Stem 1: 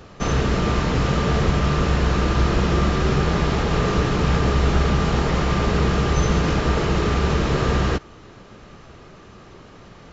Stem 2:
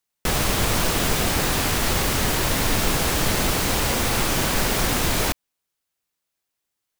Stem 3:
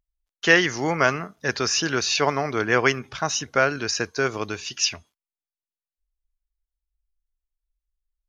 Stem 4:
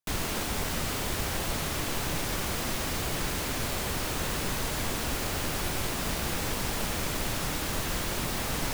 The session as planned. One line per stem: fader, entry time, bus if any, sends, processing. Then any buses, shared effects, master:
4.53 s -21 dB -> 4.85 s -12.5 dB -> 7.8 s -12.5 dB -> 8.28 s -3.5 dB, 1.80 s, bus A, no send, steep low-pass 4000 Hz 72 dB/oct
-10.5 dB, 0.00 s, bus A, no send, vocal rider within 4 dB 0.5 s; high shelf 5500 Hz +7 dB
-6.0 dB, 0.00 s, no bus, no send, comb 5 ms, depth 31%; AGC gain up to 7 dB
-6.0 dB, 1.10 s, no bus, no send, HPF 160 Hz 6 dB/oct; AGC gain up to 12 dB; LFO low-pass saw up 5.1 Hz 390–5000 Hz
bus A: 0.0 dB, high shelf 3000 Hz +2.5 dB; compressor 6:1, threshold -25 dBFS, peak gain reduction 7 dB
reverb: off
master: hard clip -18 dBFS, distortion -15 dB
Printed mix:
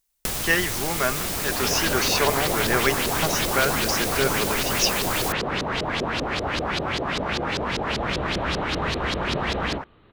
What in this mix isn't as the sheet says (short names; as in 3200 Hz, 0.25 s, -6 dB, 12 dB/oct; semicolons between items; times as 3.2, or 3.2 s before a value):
stem 1 -21.0 dB -> -29.0 dB; stem 2 -10.5 dB -> -3.5 dB; master: missing hard clip -18 dBFS, distortion -15 dB